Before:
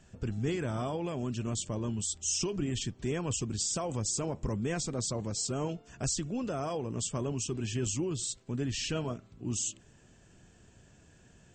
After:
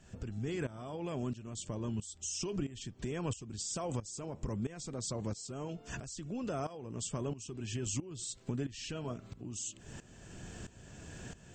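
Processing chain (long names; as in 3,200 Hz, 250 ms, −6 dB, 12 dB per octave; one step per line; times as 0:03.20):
downward compressor 10 to 1, threshold −46 dBFS, peak gain reduction 18.5 dB
shaped tremolo saw up 1.5 Hz, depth 85%
level +14 dB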